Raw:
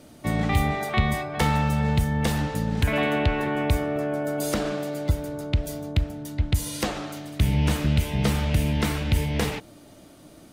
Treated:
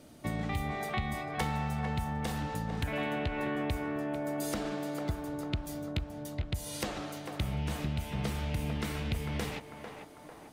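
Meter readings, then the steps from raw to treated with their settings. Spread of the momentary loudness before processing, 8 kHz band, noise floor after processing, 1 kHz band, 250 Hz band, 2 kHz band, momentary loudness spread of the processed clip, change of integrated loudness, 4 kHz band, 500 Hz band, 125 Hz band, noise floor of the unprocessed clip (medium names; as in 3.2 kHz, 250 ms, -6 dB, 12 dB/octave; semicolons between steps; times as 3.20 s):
6 LU, -9.0 dB, -51 dBFS, -8.0 dB, -9.0 dB, -9.0 dB, 6 LU, -10.0 dB, -9.0 dB, -9.5 dB, -11.0 dB, -49 dBFS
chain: compression 3:1, threshold -26 dBFS, peak gain reduction 8.5 dB; on a send: band-passed feedback delay 447 ms, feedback 62%, band-pass 860 Hz, level -4.5 dB; on the sum: trim -5.5 dB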